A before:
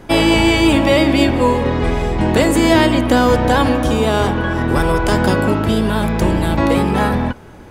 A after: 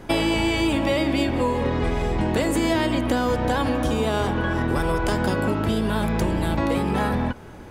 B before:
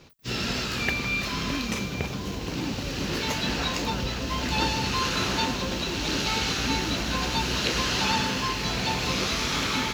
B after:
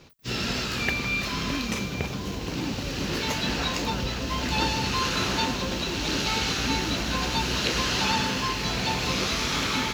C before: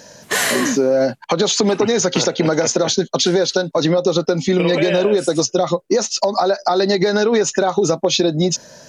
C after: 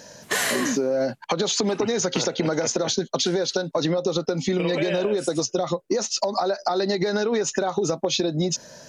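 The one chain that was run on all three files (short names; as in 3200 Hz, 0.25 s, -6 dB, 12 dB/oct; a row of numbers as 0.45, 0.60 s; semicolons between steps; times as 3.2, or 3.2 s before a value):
compressor 4:1, threshold -17 dBFS; normalise peaks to -9 dBFS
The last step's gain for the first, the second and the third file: -2.5, 0.0, -3.0 dB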